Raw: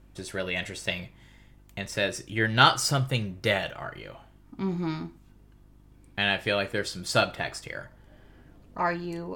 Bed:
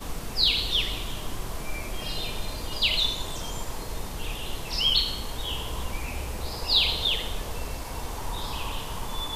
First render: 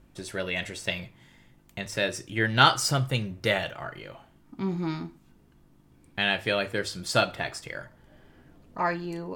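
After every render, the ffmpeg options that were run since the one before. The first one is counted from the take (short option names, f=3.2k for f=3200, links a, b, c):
-af "bandreject=f=50:t=h:w=4,bandreject=f=100:t=h:w=4"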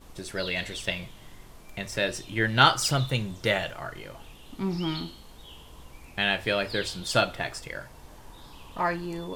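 -filter_complex "[1:a]volume=-16dB[a];[0:a][a]amix=inputs=2:normalize=0"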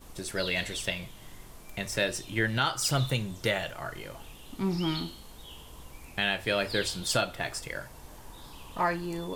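-filter_complex "[0:a]acrossover=split=730|6800[a][b][c];[c]acontrast=32[d];[a][b][d]amix=inputs=3:normalize=0,alimiter=limit=-14dB:level=0:latency=1:release=420"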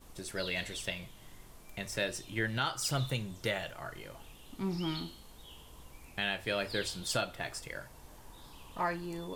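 -af "volume=-5.5dB"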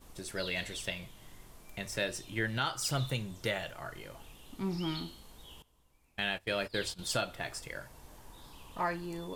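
-filter_complex "[0:a]asettb=1/sr,asplit=3[a][b][c];[a]atrim=end=5.624[d];[b]atrim=start=5.62:end=6.99,asetpts=PTS-STARTPTS,afade=t=in:d=0.004:c=qsin,afade=t=out:st=1.366:d=0.004:c=qsin,agate=range=-17dB:threshold=-41dB:ratio=16:release=100:detection=peak[e];[c]atrim=start=6.986[f];[d][e]acrossfade=d=0.004:c1=hsin:c2=qsin[g];[g][f]acrossfade=d=0.004:c1=qsin:c2=hsin"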